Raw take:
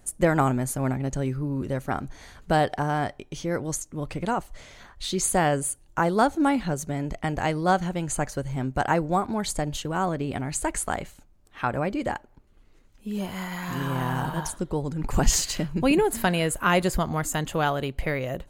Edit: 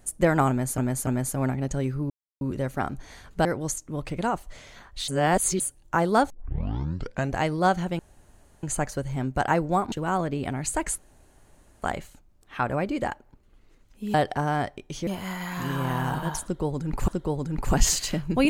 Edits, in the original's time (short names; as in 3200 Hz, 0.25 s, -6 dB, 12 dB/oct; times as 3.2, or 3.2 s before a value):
0.49–0.78 loop, 3 plays
1.52 insert silence 0.31 s
2.56–3.49 move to 13.18
5.12–5.64 reverse
6.34 tape start 1.07 s
8.03 insert room tone 0.64 s
9.32–9.8 cut
10.86 insert room tone 0.84 s
14.54–15.19 loop, 2 plays